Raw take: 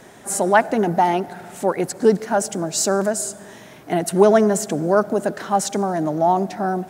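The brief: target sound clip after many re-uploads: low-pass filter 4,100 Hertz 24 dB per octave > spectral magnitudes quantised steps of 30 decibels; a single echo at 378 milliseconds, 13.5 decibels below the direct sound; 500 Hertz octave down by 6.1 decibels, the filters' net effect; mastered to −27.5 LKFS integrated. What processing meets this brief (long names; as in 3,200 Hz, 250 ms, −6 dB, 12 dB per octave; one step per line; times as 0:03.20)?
low-pass filter 4,100 Hz 24 dB per octave
parametric band 500 Hz −8.5 dB
single-tap delay 378 ms −13.5 dB
spectral magnitudes quantised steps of 30 dB
level −3.5 dB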